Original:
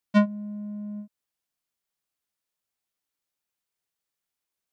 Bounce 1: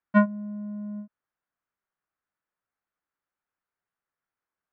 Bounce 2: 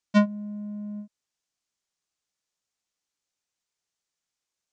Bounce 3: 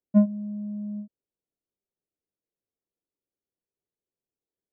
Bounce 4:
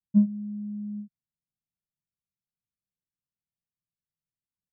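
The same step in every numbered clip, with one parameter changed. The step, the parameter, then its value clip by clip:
resonant low-pass, frequency: 1.5 kHz, 6.7 kHz, 430 Hz, 160 Hz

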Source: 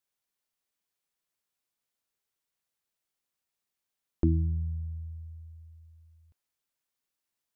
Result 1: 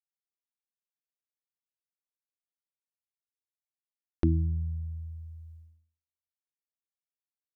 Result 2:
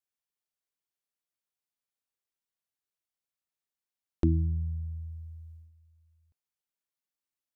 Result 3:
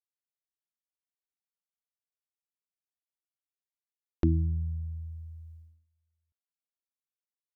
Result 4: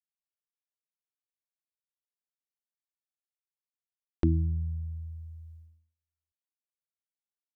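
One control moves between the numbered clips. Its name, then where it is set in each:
gate, range: -52 dB, -8 dB, -22 dB, -36 dB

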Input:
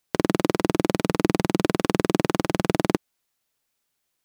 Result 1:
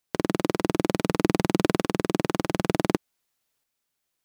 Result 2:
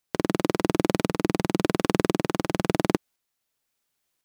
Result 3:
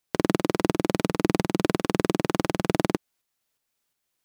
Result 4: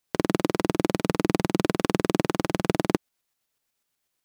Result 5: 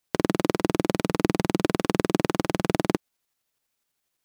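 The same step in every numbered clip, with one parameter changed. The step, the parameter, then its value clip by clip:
tremolo, rate: 0.55 Hz, 0.95 Hz, 2.8 Hz, 8.1 Hz, 12 Hz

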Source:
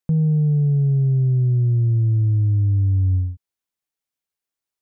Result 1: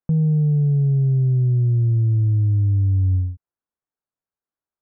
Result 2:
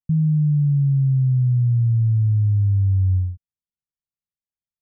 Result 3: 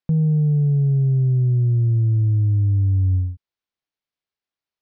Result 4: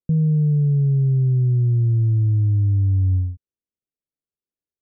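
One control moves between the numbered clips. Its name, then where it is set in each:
inverse Chebyshev low-pass, stop band from: 4 kHz, 540 Hz, 11 kHz, 1.4 kHz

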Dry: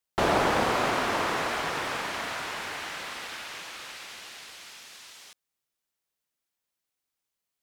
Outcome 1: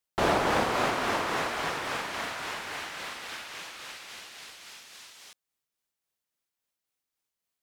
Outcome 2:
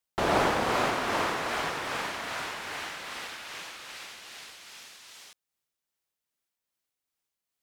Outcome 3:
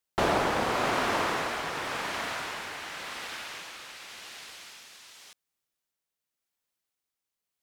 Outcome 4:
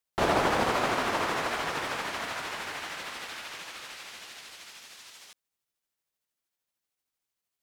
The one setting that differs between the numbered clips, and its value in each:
tremolo, rate: 3.6 Hz, 2.5 Hz, 0.9 Hz, 13 Hz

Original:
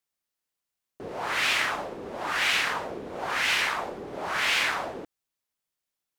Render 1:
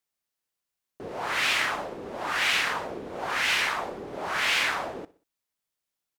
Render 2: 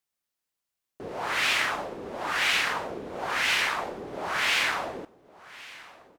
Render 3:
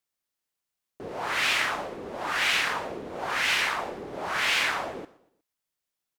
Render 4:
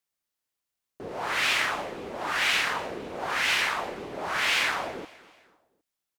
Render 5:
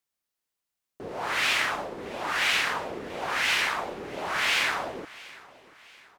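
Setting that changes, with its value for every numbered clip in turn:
feedback delay, time: 62 ms, 1113 ms, 120 ms, 254 ms, 685 ms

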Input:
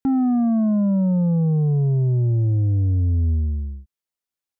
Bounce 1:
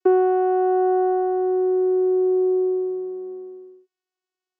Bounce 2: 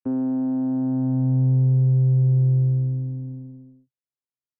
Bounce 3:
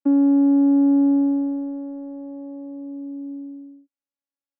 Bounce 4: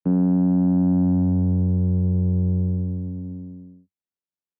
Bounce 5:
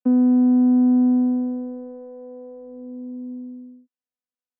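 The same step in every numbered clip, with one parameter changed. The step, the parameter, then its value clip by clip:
vocoder, frequency: 370 Hz, 130 Hz, 280 Hz, 91 Hz, 250 Hz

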